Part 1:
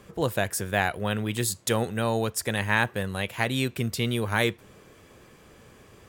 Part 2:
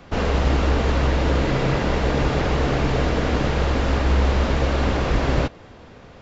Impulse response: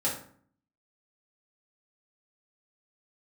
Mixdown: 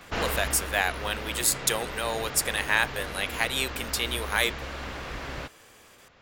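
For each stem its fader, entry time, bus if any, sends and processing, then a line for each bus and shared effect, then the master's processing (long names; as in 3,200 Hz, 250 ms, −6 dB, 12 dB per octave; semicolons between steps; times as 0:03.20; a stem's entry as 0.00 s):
−3.0 dB, 0.00 s, no send, sub-octave generator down 1 octave, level +2 dB; high-pass filter 460 Hz 12 dB per octave; noise gate with hold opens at −46 dBFS
−8.0 dB, 0.00 s, no send, parametric band 1,600 Hz +7 dB 2.2 octaves; automatic ducking −11 dB, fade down 0.70 s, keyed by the first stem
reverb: not used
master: high-shelf EQ 2,100 Hz +9 dB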